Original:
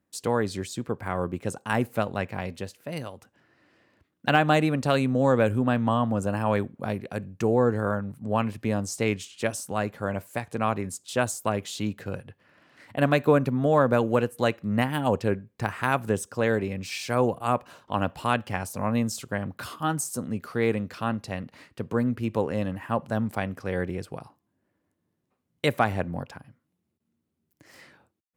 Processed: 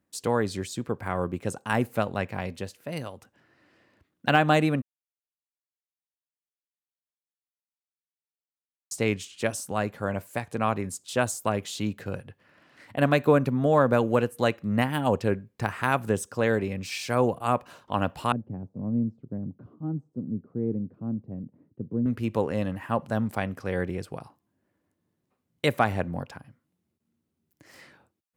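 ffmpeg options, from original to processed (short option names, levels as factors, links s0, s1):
-filter_complex "[0:a]asettb=1/sr,asplit=3[s0][s1][s2];[s0]atrim=end=18.324[s3];[s1]atrim=start=18.32:end=22.06,asetpts=PTS-STARTPTS,afade=t=in:d=0.004:c=qsin,afade=t=out:st=3.736:d=0.004:c=qsin,asuperpass=centerf=190:order=4:qfactor=0.78[s4];[s2]atrim=start=22.056[s5];[s3][s4]acrossfade=d=0.004:c1=hsin:c2=qsin[s6];[s6][s5]acrossfade=d=0.004:c1=qsin:c2=hsin,asplit=3[s7][s8][s9];[s7]atrim=end=4.82,asetpts=PTS-STARTPTS,afade=t=out:st=4.816:d=0.004:c=hsin[s10];[s8]atrim=start=4.82:end=8.91,asetpts=PTS-STARTPTS,volume=0[s11];[s9]atrim=start=8.91,asetpts=PTS-STARTPTS,afade=t=in:d=0.004:c=hsin[s12];[s10][s11][s12]concat=n=3:v=0:a=1"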